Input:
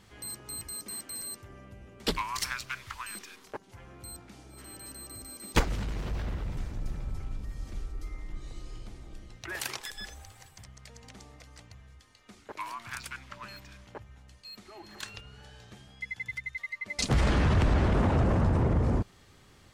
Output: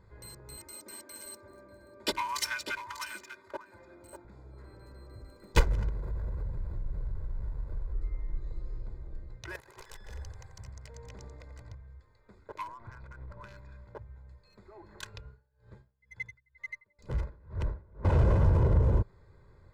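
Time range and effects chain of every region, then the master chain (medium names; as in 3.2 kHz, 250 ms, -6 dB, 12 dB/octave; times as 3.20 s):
0.57–4.25 s: high-pass 190 Hz + comb 3.3 ms, depth 81% + delay 594 ms -9.5 dB
5.89–7.93 s: send-on-delta sampling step -42.5 dBFS + treble shelf 10 kHz +6.5 dB + compression 12:1, threshold -34 dBFS
9.56–11.75 s: feedback delay 88 ms, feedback 45%, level -6 dB + compressor with a negative ratio -44 dBFS
12.67–13.44 s: square wave that keeps the level + compression 3:1, threshold -41 dBFS + tape spacing loss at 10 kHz 25 dB
15.26–18.05 s: band-stop 720 Hz, Q 9.9 + compression 10:1, threshold -28 dBFS + logarithmic tremolo 2.1 Hz, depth 28 dB
whole clip: local Wiener filter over 15 samples; bass shelf 140 Hz +4.5 dB; comb 2 ms, depth 57%; trim -3 dB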